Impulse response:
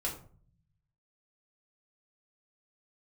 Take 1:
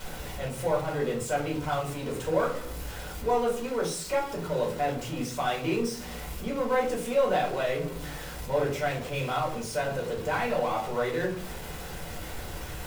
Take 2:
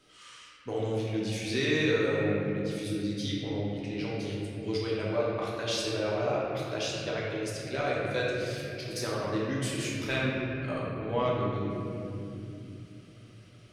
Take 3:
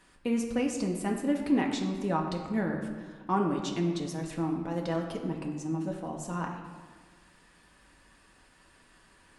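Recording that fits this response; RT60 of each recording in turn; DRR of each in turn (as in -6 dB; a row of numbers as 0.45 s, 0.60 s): 1; 0.45 s, 2.6 s, 1.6 s; -3.5 dB, -6.0 dB, 0.0 dB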